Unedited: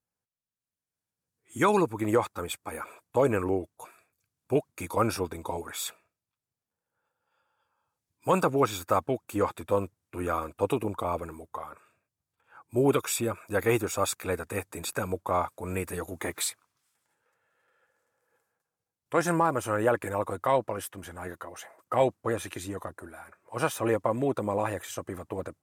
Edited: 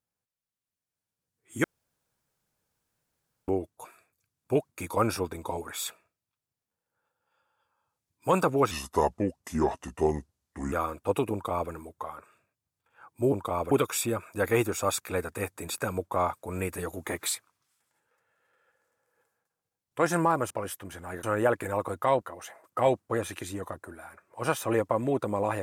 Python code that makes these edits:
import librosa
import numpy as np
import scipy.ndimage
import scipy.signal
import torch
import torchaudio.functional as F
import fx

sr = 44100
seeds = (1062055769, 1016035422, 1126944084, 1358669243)

y = fx.edit(x, sr, fx.room_tone_fill(start_s=1.64, length_s=1.84),
    fx.speed_span(start_s=8.71, length_s=1.55, speed=0.77),
    fx.duplicate(start_s=10.86, length_s=0.39, to_s=12.86),
    fx.move(start_s=20.63, length_s=0.73, to_s=19.65), tone=tone)